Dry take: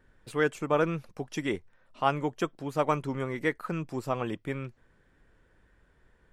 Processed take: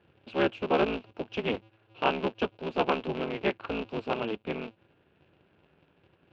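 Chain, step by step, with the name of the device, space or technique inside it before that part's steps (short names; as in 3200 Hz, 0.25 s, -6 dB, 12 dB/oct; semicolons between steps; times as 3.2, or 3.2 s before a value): ring modulator pedal into a guitar cabinet (polarity switched at an audio rate 110 Hz; speaker cabinet 99–3700 Hz, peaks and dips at 120 Hz -6 dB, 410 Hz +4 dB, 1200 Hz -4 dB, 1900 Hz -9 dB, 2700 Hz +9 dB)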